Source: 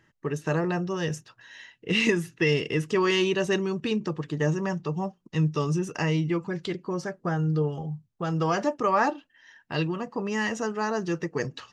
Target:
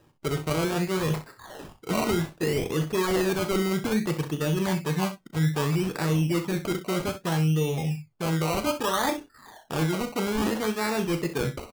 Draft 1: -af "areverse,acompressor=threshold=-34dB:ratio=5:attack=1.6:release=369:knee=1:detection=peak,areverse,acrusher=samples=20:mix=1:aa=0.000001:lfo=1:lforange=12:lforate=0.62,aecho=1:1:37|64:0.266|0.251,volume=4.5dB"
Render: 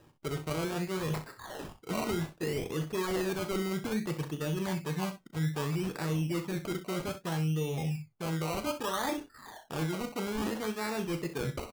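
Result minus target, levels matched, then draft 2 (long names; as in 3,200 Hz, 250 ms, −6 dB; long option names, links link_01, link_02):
downward compressor: peak gain reduction +7 dB
-af "areverse,acompressor=threshold=-25dB:ratio=5:attack=1.6:release=369:knee=1:detection=peak,areverse,acrusher=samples=20:mix=1:aa=0.000001:lfo=1:lforange=12:lforate=0.62,aecho=1:1:37|64:0.266|0.251,volume=4.5dB"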